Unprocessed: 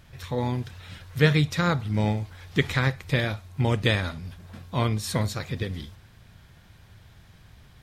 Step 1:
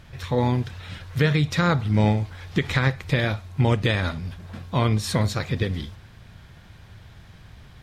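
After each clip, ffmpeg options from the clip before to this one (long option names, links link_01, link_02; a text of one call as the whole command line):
ffmpeg -i in.wav -af "highshelf=frequency=8100:gain=-9,alimiter=limit=-16dB:level=0:latency=1:release=151,volume=5.5dB" out.wav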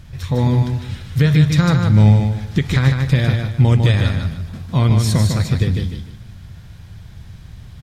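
ffmpeg -i in.wav -af "bass=frequency=250:gain=10,treble=frequency=4000:gain=7,aecho=1:1:152|304|456|608:0.562|0.169|0.0506|0.0152,volume=-1dB" out.wav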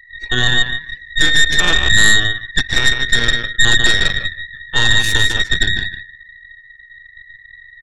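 ffmpeg -i in.wav -af "afftfilt=real='real(if(between(b,1,1012),(2*floor((b-1)/92)+1)*92-b,b),0)':imag='imag(if(between(b,1,1012),(2*floor((b-1)/92)+1)*92-b,b),0)*if(between(b,1,1012),-1,1)':win_size=2048:overlap=0.75,afftdn=noise_reduction=28:noise_floor=-33,aeval=exprs='0.944*(cos(1*acos(clip(val(0)/0.944,-1,1)))-cos(1*PI/2))+0.422*(cos(6*acos(clip(val(0)/0.944,-1,1)))-cos(6*PI/2))':channel_layout=same,volume=-4dB" out.wav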